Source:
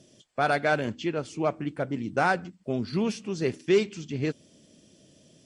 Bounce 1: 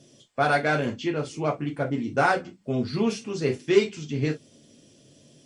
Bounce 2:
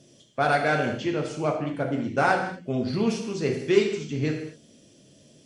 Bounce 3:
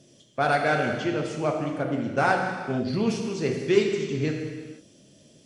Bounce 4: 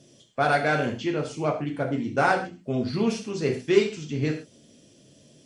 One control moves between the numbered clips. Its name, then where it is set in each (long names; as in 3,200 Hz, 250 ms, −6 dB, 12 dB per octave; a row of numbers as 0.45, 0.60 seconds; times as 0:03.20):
reverb whose tail is shaped and stops, gate: 80, 270, 530, 160 milliseconds